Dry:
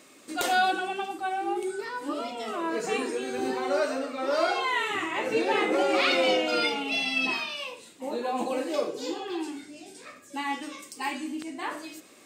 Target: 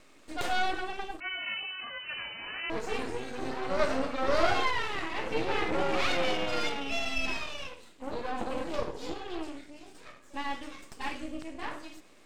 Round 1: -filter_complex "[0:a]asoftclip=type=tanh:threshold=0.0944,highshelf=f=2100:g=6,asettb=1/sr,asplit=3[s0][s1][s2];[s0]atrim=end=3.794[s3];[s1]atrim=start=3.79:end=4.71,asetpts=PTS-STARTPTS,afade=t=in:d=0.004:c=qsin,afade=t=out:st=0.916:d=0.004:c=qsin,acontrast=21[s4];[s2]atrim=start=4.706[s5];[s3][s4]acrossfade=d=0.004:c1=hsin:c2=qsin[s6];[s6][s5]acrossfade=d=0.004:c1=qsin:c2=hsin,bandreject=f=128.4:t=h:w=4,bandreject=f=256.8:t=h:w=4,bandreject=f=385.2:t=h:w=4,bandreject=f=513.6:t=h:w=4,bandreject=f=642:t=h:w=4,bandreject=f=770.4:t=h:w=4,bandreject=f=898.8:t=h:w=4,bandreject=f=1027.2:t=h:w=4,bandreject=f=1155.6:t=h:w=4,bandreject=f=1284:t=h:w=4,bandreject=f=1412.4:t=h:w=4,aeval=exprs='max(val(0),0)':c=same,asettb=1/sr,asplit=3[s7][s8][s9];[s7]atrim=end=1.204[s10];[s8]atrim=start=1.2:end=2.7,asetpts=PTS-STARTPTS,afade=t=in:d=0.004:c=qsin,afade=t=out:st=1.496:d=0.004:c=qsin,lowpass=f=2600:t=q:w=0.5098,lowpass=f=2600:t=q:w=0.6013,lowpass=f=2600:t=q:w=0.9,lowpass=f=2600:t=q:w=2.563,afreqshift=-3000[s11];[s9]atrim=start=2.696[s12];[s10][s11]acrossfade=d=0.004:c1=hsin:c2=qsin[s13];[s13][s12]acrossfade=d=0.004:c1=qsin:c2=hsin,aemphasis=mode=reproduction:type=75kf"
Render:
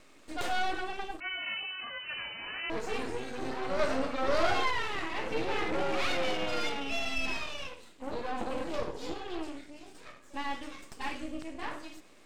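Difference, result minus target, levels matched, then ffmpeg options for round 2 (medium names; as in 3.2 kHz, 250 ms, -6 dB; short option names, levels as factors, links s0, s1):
saturation: distortion +12 dB
-filter_complex "[0:a]asoftclip=type=tanh:threshold=0.237,highshelf=f=2100:g=6,asettb=1/sr,asplit=3[s0][s1][s2];[s0]atrim=end=3.794[s3];[s1]atrim=start=3.79:end=4.71,asetpts=PTS-STARTPTS,afade=t=in:d=0.004:c=qsin,afade=t=out:st=0.916:d=0.004:c=qsin,acontrast=21[s4];[s2]atrim=start=4.706[s5];[s3][s4]acrossfade=d=0.004:c1=hsin:c2=qsin[s6];[s6][s5]acrossfade=d=0.004:c1=qsin:c2=hsin,bandreject=f=128.4:t=h:w=4,bandreject=f=256.8:t=h:w=4,bandreject=f=385.2:t=h:w=4,bandreject=f=513.6:t=h:w=4,bandreject=f=642:t=h:w=4,bandreject=f=770.4:t=h:w=4,bandreject=f=898.8:t=h:w=4,bandreject=f=1027.2:t=h:w=4,bandreject=f=1155.6:t=h:w=4,bandreject=f=1284:t=h:w=4,bandreject=f=1412.4:t=h:w=4,aeval=exprs='max(val(0),0)':c=same,asettb=1/sr,asplit=3[s7][s8][s9];[s7]atrim=end=1.204[s10];[s8]atrim=start=1.2:end=2.7,asetpts=PTS-STARTPTS,afade=t=in:d=0.004:c=qsin,afade=t=out:st=1.496:d=0.004:c=qsin,lowpass=f=2600:t=q:w=0.5098,lowpass=f=2600:t=q:w=0.6013,lowpass=f=2600:t=q:w=0.9,lowpass=f=2600:t=q:w=2.563,afreqshift=-3000[s11];[s9]atrim=start=2.696[s12];[s10][s11]acrossfade=d=0.004:c1=hsin:c2=qsin[s13];[s13][s12]acrossfade=d=0.004:c1=qsin:c2=hsin,aemphasis=mode=reproduction:type=75kf"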